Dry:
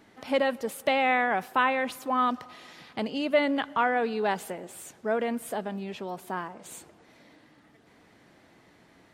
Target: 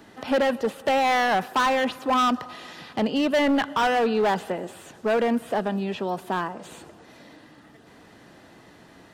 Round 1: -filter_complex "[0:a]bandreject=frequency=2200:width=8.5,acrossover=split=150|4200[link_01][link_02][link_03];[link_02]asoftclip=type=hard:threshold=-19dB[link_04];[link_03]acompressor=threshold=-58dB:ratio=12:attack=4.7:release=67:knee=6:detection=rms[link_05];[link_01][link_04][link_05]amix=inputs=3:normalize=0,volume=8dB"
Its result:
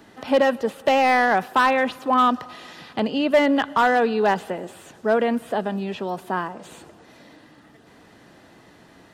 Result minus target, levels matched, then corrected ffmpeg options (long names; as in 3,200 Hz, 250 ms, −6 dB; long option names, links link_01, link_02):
hard clipping: distortion −9 dB
-filter_complex "[0:a]bandreject=frequency=2200:width=8.5,acrossover=split=150|4200[link_01][link_02][link_03];[link_02]asoftclip=type=hard:threshold=-26dB[link_04];[link_03]acompressor=threshold=-58dB:ratio=12:attack=4.7:release=67:knee=6:detection=rms[link_05];[link_01][link_04][link_05]amix=inputs=3:normalize=0,volume=8dB"